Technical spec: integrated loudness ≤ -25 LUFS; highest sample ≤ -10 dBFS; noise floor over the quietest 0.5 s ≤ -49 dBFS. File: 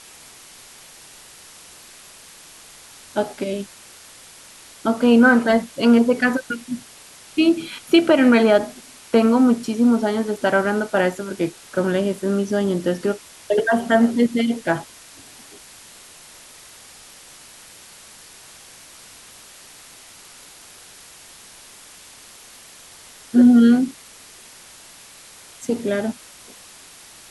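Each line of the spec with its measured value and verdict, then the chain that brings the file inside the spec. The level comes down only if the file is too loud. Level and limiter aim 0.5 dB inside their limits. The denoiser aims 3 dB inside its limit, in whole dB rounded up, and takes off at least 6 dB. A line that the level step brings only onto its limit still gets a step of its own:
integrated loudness -18.5 LUFS: fail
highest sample -3.0 dBFS: fail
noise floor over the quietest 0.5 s -44 dBFS: fail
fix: gain -7 dB; limiter -10.5 dBFS

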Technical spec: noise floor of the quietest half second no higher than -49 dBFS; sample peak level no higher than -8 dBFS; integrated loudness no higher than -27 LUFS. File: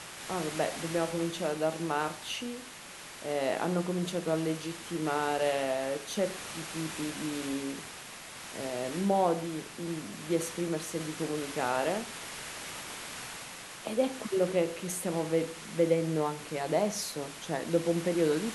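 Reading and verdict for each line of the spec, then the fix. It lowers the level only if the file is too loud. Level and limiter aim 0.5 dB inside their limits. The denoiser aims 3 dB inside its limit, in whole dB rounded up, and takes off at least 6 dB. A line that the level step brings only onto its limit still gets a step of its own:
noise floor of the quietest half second -47 dBFS: fail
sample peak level -14.0 dBFS: OK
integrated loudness -32.5 LUFS: OK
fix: denoiser 6 dB, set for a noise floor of -47 dBFS

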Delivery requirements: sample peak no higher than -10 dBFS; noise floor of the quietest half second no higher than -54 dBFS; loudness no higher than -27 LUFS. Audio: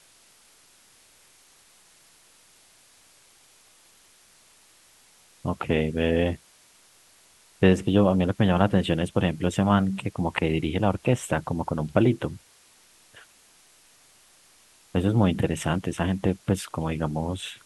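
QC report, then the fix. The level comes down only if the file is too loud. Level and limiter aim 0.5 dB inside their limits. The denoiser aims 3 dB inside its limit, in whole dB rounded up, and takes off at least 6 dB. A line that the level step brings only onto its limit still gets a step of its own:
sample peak -4.0 dBFS: fail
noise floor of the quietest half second -57 dBFS: OK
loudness -25.0 LUFS: fail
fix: gain -2.5 dB; limiter -10.5 dBFS

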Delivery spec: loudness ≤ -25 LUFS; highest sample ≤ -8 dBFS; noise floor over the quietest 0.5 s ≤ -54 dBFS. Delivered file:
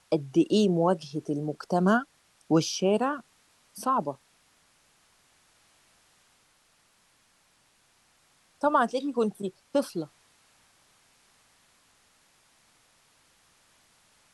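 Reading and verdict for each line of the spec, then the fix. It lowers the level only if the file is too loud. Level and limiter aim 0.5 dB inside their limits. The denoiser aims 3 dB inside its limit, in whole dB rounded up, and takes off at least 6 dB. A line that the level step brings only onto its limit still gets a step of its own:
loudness -27.5 LUFS: OK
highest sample -10.5 dBFS: OK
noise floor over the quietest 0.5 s -66 dBFS: OK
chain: none

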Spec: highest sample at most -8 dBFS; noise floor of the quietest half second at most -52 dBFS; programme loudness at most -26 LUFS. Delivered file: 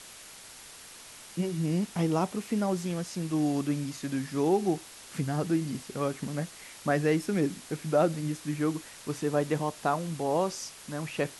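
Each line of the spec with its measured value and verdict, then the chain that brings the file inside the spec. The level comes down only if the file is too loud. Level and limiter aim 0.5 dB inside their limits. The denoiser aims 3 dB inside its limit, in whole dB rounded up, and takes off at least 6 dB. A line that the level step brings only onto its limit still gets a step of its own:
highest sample -13.0 dBFS: OK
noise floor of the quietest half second -48 dBFS: fail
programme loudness -30.5 LUFS: OK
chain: denoiser 7 dB, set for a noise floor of -48 dBFS

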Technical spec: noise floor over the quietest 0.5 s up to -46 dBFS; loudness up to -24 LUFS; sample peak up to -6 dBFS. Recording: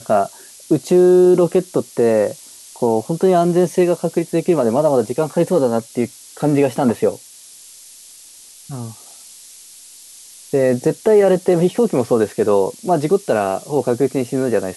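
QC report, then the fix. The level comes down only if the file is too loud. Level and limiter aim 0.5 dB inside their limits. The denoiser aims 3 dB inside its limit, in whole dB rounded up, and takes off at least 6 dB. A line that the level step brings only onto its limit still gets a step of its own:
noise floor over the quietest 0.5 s -42 dBFS: fail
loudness -17.0 LUFS: fail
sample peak -5.0 dBFS: fail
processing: gain -7.5 dB

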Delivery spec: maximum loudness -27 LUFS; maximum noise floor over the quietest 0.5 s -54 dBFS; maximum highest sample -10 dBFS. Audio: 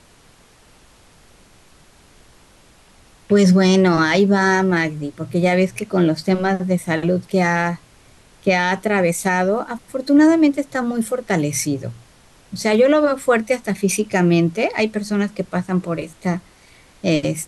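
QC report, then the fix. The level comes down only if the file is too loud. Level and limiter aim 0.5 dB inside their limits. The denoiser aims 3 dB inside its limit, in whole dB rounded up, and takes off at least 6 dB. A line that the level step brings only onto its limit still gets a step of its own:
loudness -18.0 LUFS: fail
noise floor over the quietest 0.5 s -51 dBFS: fail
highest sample -5.5 dBFS: fail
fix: gain -9.5 dB

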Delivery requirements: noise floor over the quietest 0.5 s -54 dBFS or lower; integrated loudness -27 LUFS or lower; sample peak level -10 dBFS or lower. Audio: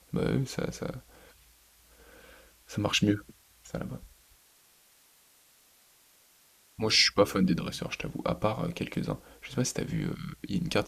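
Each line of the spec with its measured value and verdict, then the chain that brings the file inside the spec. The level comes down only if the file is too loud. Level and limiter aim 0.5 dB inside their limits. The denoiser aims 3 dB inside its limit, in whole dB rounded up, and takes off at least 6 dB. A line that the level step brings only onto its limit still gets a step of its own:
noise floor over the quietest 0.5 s -62 dBFS: OK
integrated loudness -30.0 LUFS: OK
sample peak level -9.0 dBFS: fail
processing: limiter -10.5 dBFS

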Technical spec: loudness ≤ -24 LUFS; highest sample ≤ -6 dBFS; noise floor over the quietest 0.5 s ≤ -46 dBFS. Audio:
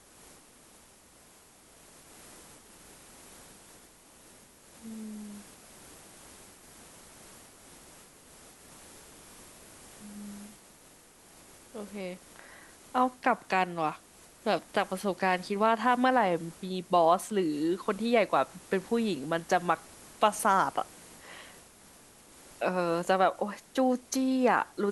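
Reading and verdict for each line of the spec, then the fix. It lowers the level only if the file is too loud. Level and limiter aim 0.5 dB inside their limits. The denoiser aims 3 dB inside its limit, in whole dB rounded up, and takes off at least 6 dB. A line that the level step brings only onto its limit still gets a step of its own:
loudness -29.0 LUFS: OK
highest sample -10.5 dBFS: OK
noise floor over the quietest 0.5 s -57 dBFS: OK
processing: none

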